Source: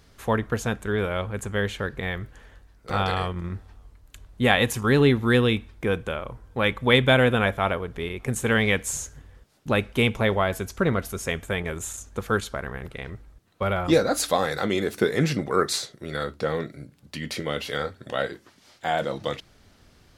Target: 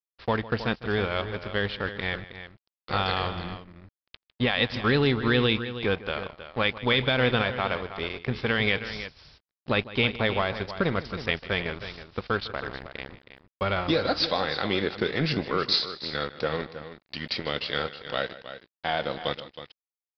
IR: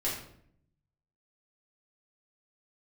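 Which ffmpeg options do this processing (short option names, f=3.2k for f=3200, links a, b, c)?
-filter_complex "[0:a]alimiter=limit=-13.5dB:level=0:latency=1:release=128,crystalizer=i=3:c=0,aeval=exprs='sgn(val(0))*max(abs(val(0))-0.0178,0)':c=same,asplit=2[a][b];[b]aecho=0:1:154|318:0.141|0.251[c];[a][c]amix=inputs=2:normalize=0,aresample=11025,aresample=44100"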